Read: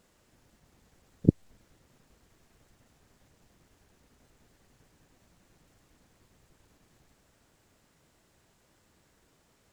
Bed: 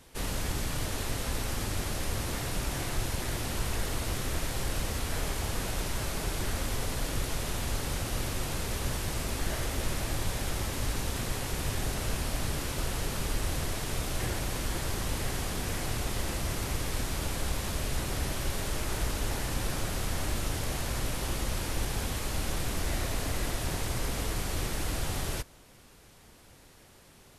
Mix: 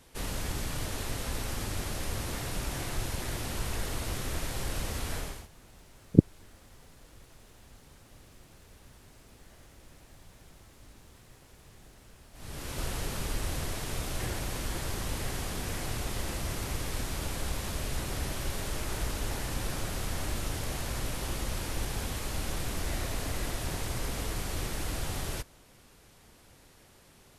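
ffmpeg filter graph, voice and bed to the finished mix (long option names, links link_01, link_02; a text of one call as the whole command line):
ffmpeg -i stem1.wav -i stem2.wav -filter_complex "[0:a]adelay=4900,volume=2.5dB[link_01];[1:a]volume=19.5dB,afade=type=out:start_time=5.12:duration=0.36:silence=0.0841395,afade=type=in:start_time=12.33:duration=0.5:silence=0.0841395[link_02];[link_01][link_02]amix=inputs=2:normalize=0" out.wav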